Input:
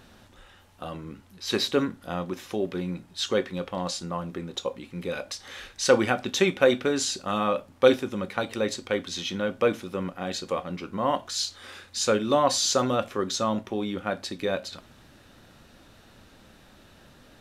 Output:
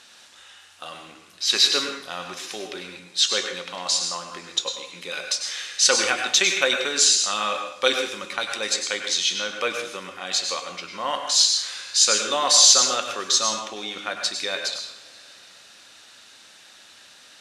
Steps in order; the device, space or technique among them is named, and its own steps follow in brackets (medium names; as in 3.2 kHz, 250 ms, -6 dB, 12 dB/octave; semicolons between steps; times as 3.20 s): compressed reverb return (on a send at -11.5 dB: reverberation RT60 2.4 s, pre-delay 80 ms + compression, threshold -37 dBFS, peak gain reduction 18.5 dB); on the sum: frequency weighting ITU-R 468; plate-style reverb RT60 0.52 s, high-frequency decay 0.95×, pre-delay 85 ms, DRR 4.5 dB